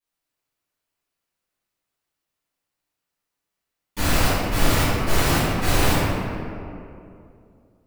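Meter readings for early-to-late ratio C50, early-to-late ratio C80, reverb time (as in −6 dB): −4.0 dB, −1.5 dB, 2.6 s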